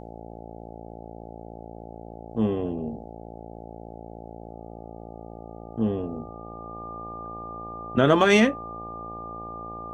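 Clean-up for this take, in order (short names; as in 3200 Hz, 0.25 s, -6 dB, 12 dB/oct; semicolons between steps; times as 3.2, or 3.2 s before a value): de-hum 56.6 Hz, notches 15; notch 1200 Hz, Q 30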